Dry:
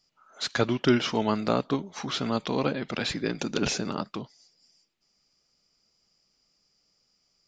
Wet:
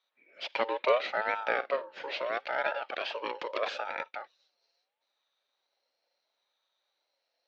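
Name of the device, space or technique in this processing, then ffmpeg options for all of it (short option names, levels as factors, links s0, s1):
voice changer toy: -filter_complex "[0:a]aeval=exprs='val(0)*sin(2*PI*900*n/s+900*0.25/0.75*sin(2*PI*0.75*n/s))':c=same,highpass=480,equalizer=f=560:t=q:w=4:g=8,equalizer=f=1100:t=q:w=4:g=-6,equalizer=f=2500:t=q:w=4:g=3,lowpass=f=3700:w=0.5412,lowpass=f=3700:w=1.3066,asettb=1/sr,asplit=3[s0][s1][s2];[s0]atrim=end=1.404[s3];[s1]atrim=start=1.4:end=2.14,asetpts=PTS-STARTPTS,afade=t=in:d=0.004:c=qsin,afade=t=out:st=0.736:d=0.004:c=qsin,asplit=2[s4][s5];[s5]adelay=49,volume=0.211[s6];[s4][s6]amix=inputs=2:normalize=0,atrim=end_sample=32634[s7];[s2]atrim=start=2.136[s8];[s3][s7]acrossfade=d=0.004:c1=hsin:c2=qsin[s9];[s9][s8]acrossfade=d=0.004:c1=qsin:c2=hsin,volume=0.841"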